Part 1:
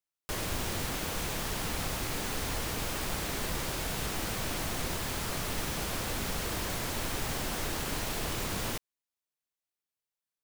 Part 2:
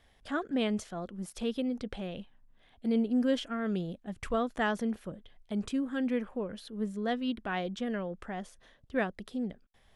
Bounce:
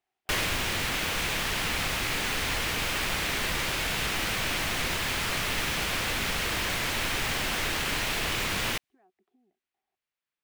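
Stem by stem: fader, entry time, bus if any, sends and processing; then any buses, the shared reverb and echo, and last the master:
+1.0 dB, 0.00 s, no send, vocal rider 0.5 s
-12.0 dB, 0.00 s, no send, compressor 6:1, threshold -41 dBFS, peak gain reduction 16.5 dB; double band-pass 530 Hz, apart 1 oct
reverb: off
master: bell 2400 Hz +10.5 dB 1.9 oct; mismatched tape noise reduction decoder only

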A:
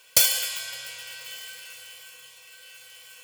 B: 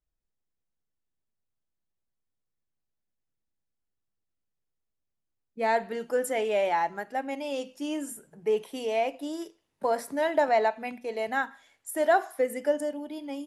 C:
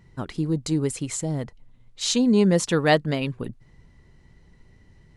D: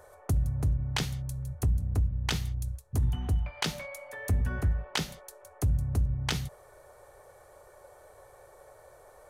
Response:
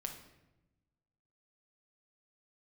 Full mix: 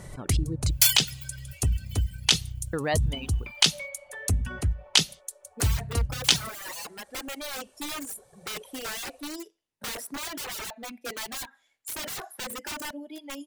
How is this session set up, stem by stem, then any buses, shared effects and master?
+1.5 dB, 0.65 s, no send, HPF 1400 Hz 12 dB/oct; reverb removal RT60 0.99 s; companded quantiser 4-bit; auto duck -10 dB, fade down 1.60 s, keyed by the third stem
-1.0 dB, 0.00 s, no send, high shelf 2200 Hz +6.5 dB; wrapped overs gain 27.5 dB
-8.5 dB, 0.00 s, muted 0.71–2.73, no send, backwards sustainer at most 52 dB/s
+2.0 dB, 0.00 s, no send, band shelf 5100 Hz +12 dB 2.3 oct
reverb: off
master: reverb removal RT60 1.7 s

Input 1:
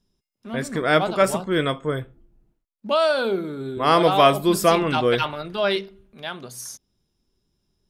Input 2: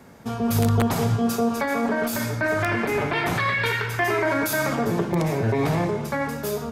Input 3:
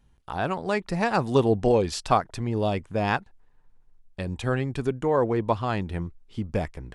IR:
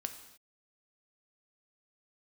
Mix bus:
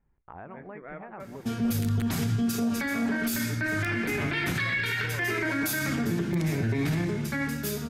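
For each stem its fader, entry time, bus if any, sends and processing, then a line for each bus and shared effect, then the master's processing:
-11.5 dB, 0.00 s, bus A, no send, auto duck -14 dB, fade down 1.90 s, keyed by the third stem
0.0 dB, 1.20 s, no bus, no send, band shelf 720 Hz -12.5 dB
-8.5 dB, 0.00 s, bus A, no send, compressor 2:1, threshold -32 dBFS, peak gain reduction 9.5 dB
bus A: 0.0 dB, Chebyshev low-pass 2200 Hz, order 4; compressor 3:1, threshold -39 dBFS, peak gain reduction 7 dB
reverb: off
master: notches 60/120 Hz; limiter -19.5 dBFS, peak gain reduction 10.5 dB

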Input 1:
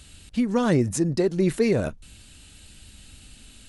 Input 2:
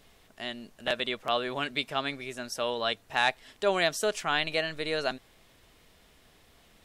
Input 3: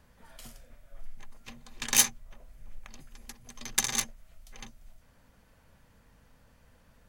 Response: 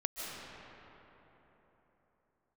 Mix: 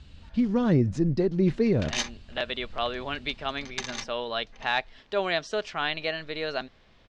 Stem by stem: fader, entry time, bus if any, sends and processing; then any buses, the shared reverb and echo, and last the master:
-7.0 dB, 0.00 s, no send, low shelf 350 Hz +9 dB
-1.0 dB, 1.50 s, no send, dry
-2.5 dB, 0.00 s, no send, dry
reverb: off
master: LPF 5100 Hz 24 dB/oct

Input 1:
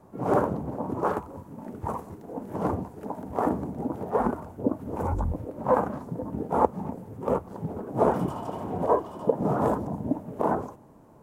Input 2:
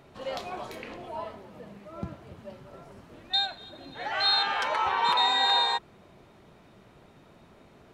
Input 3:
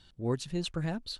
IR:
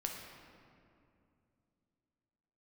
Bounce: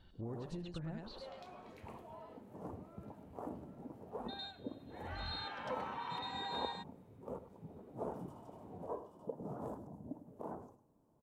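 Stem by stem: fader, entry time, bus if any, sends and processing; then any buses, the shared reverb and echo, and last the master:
-19.0 dB, 0.00 s, no bus, no send, echo send -13.5 dB, bell 1900 Hz -7.5 dB 1.6 oct; auto duck -12 dB, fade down 0.25 s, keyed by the third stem
-15.5 dB, 0.95 s, bus A, no send, echo send -6 dB, dry
-0.5 dB, 0.00 s, bus A, no send, echo send -16.5 dB, high shelf 7900 Hz -9.5 dB
bus A: 0.0 dB, tape spacing loss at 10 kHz 29 dB; compressor 10:1, threshold -41 dBFS, peak gain reduction 14.5 dB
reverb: off
echo: echo 0.103 s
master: dry

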